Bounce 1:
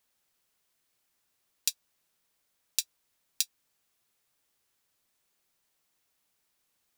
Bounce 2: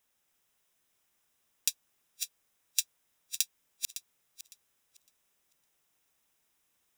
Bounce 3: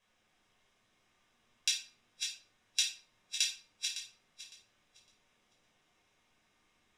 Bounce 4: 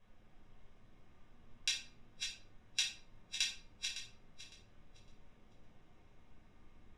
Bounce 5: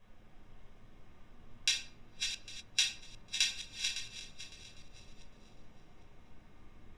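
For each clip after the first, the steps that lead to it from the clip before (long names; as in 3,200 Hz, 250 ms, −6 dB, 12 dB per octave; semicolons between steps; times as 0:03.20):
feedback delay that plays each chunk backwards 279 ms, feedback 45%, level −5 dB; notch filter 4,400 Hz, Q 5.4
low-pass filter 4,700 Hz 12 dB per octave; rectangular room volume 480 cubic metres, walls furnished, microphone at 5.5 metres
spectral tilt −4 dB per octave; level +4 dB
feedback delay that plays each chunk backwards 402 ms, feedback 43%, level −13 dB; level +5 dB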